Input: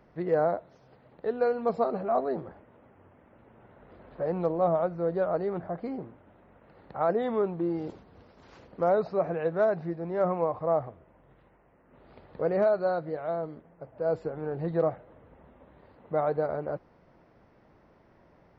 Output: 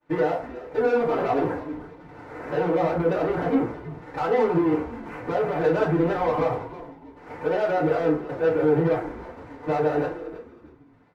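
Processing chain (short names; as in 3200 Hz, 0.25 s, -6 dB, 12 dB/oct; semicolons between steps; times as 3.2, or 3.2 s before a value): steep low-pass 2500 Hz 48 dB/oct; expander -50 dBFS; tilt +2.5 dB/oct; notch 660 Hz, Q 12; compressor 3:1, threshold -31 dBFS, peak gain reduction 7.5 dB; limiter -32 dBFS, peak gain reduction 11 dB; sample leveller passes 2; time stretch by phase-locked vocoder 0.6×; frequency-shifting echo 0.318 s, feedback 33%, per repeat -110 Hz, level -14 dB; FDN reverb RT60 0.4 s, low-frequency decay 0.85×, high-frequency decay 0.65×, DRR -9 dB; gain +4.5 dB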